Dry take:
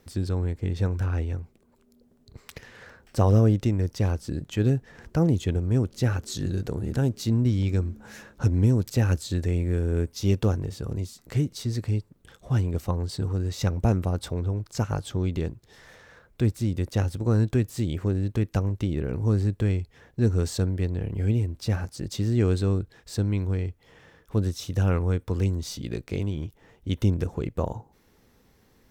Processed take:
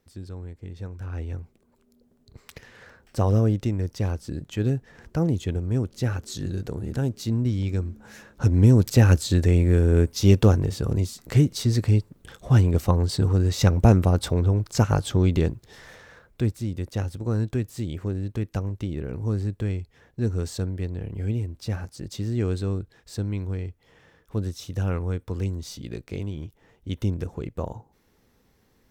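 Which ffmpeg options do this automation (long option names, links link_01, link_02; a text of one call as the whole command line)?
ffmpeg -i in.wav -af "volume=6.5dB,afade=type=in:start_time=0.98:duration=0.4:silence=0.354813,afade=type=in:start_time=8.28:duration=0.53:silence=0.398107,afade=type=out:start_time=15.45:duration=1.17:silence=0.334965" out.wav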